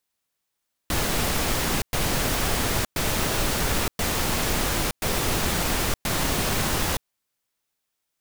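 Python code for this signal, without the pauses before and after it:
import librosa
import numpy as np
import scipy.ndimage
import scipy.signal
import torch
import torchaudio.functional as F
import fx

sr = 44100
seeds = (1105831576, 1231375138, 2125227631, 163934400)

y = fx.noise_burst(sr, seeds[0], colour='pink', on_s=0.92, off_s=0.11, bursts=6, level_db=-24.0)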